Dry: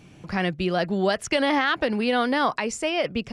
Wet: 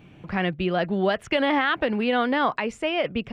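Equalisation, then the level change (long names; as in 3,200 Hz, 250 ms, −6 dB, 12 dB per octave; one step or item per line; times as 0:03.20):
flat-topped bell 7,300 Hz −14 dB
0.0 dB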